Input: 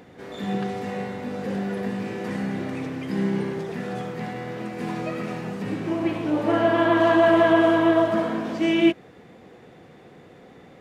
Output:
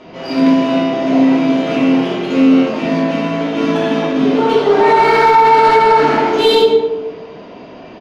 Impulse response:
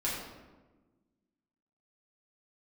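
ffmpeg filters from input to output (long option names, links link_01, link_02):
-filter_complex "[0:a]highshelf=frequency=3200:gain=-6,acrossover=split=2400[link_01][link_02];[link_02]acontrast=68[link_03];[link_01][link_03]amix=inputs=2:normalize=0,aresample=11025,aresample=44100,asplit=2[link_04][link_05];[link_05]volume=17dB,asoftclip=hard,volume=-17dB,volume=-10.5dB[link_06];[link_04][link_06]amix=inputs=2:normalize=0,adynamicsmooth=sensitivity=4.5:basefreq=3900[link_07];[1:a]atrim=start_sample=2205[link_08];[link_07][link_08]afir=irnorm=-1:irlink=0,asetrate=59535,aresample=44100,alimiter=level_in=5dB:limit=-1dB:release=50:level=0:latency=1,volume=-1dB"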